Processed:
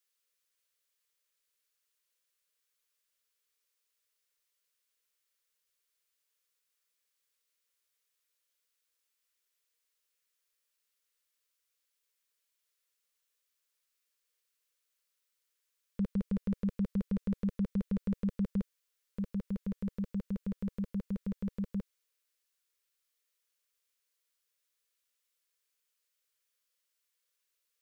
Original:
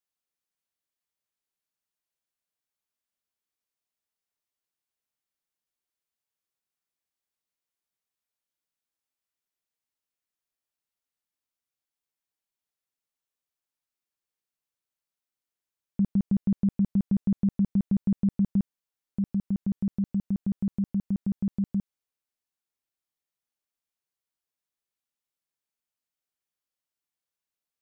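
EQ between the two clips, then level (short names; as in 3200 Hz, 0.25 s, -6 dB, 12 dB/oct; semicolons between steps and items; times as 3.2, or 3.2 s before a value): bell 270 Hz -10 dB 0.81 oct; resonant low shelf 400 Hz -6.5 dB, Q 3; fixed phaser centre 300 Hz, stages 4; +8.5 dB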